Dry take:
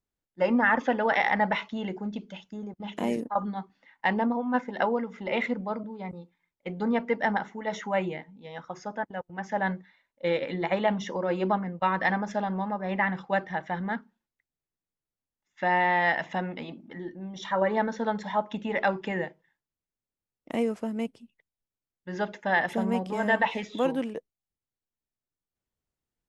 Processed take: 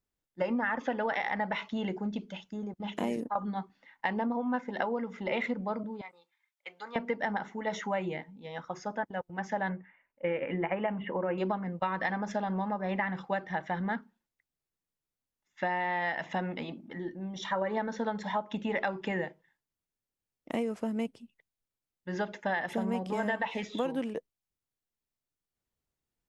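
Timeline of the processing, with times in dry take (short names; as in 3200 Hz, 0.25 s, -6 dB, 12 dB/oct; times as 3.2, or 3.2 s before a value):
6.01–6.96 HPF 1200 Hz
9.69–11.38 steep low-pass 2900 Hz 72 dB/oct
whole clip: compressor 10:1, threshold -27 dBFS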